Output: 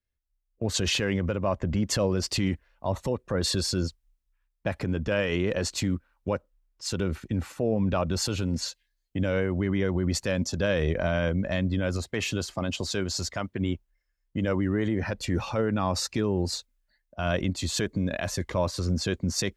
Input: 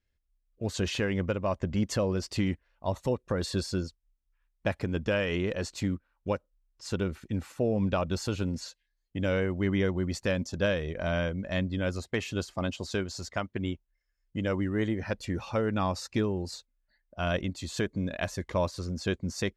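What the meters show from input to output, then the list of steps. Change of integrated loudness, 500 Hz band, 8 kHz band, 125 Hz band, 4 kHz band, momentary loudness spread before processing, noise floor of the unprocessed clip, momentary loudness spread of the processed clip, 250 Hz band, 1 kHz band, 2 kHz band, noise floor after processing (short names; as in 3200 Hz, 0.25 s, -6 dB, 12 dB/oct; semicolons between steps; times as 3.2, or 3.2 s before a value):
+3.0 dB, +2.0 dB, +9.0 dB, +3.5 dB, +7.0 dB, 7 LU, -78 dBFS, 7 LU, +2.5 dB, +2.0 dB, +2.0 dB, -78 dBFS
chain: limiter -26.5 dBFS, peak gain reduction 9 dB; three-band expander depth 40%; gain +8.5 dB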